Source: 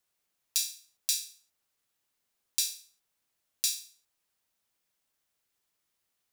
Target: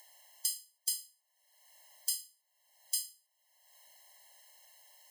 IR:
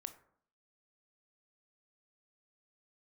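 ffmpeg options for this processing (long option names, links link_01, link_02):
-af "asetrate=54684,aresample=44100,acompressor=mode=upward:threshold=-37dB:ratio=2.5,afftfilt=real='re*eq(mod(floor(b*sr/1024/550),2),1)':imag='im*eq(mod(floor(b*sr/1024/550),2),1)':win_size=1024:overlap=0.75"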